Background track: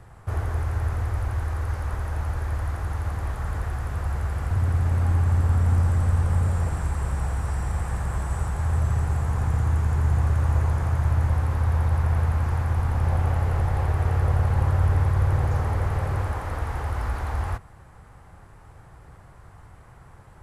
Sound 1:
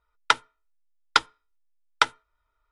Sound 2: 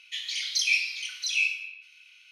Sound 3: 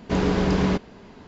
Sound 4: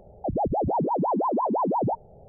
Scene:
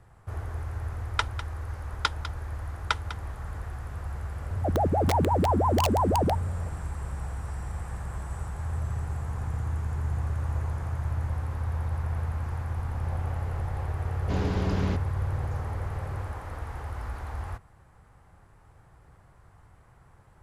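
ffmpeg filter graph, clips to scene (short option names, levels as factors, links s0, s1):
-filter_complex "[0:a]volume=0.398[s0];[1:a]aecho=1:1:200:0.237[s1];[4:a]aeval=exprs='(mod(9.44*val(0)+1,2)-1)/9.44':c=same[s2];[s1]atrim=end=2.71,asetpts=PTS-STARTPTS,volume=0.422,afade=t=in:d=0.004:c=hsin,afade=t=out:st=2.706:d=0.004:c=hsin,adelay=890[s3];[s2]atrim=end=2.28,asetpts=PTS-STARTPTS,volume=0.944,afade=t=in:d=0.004:c=hsin,afade=t=out:st=2.276:d=0.004:c=hsin,adelay=4400[s4];[3:a]atrim=end=1.27,asetpts=PTS-STARTPTS,volume=0.355,afade=t=in:d=0.004:c=hsin,afade=t=out:st=1.266:d=0.004:c=hsin,adelay=14190[s5];[s0][s3][s4][s5]amix=inputs=4:normalize=0"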